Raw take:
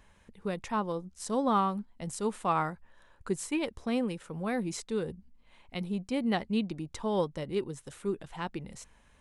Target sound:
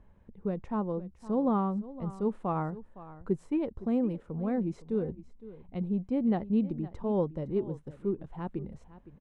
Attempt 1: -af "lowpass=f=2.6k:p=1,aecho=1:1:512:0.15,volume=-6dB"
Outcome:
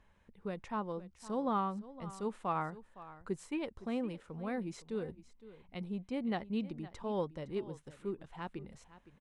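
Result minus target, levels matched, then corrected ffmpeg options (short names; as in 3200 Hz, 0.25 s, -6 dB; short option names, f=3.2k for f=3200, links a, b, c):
1000 Hz band +5.5 dB
-af "lowpass=f=2.6k:p=1,tiltshelf=f=1.1k:g=10,aecho=1:1:512:0.15,volume=-6dB"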